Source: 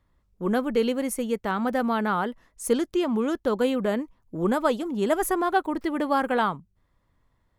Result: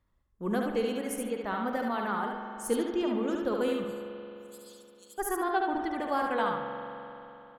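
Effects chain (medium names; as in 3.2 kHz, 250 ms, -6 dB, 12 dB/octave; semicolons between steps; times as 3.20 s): reverb removal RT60 1.8 s; 3.84–5.18 s: inverse Chebyshev high-pass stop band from 1.8 kHz, stop band 50 dB; feedback delay 72 ms, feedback 21%, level -4 dB; on a send at -5 dB: reverberation RT60 3.2 s, pre-delay 43 ms; on the sum: trim -6.5 dB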